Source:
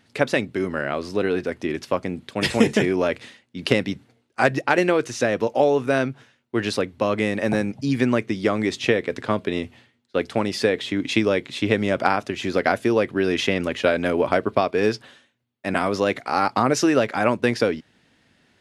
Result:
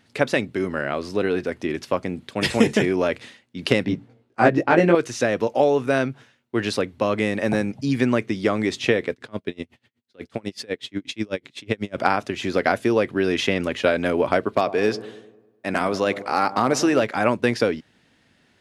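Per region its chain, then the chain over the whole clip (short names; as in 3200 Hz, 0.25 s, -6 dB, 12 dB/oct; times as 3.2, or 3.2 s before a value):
3.85–4.95 HPF 230 Hz 6 dB/oct + tilt -3.5 dB/oct + doubler 18 ms -2 dB
9.12–11.98 bell 940 Hz -3 dB 1.9 oct + dB-linear tremolo 8.1 Hz, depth 31 dB
14.45–17.03 low shelf 110 Hz -7.5 dB + hard clip -9 dBFS + dark delay 0.1 s, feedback 54%, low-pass 940 Hz, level -13 dB
whole clip: dry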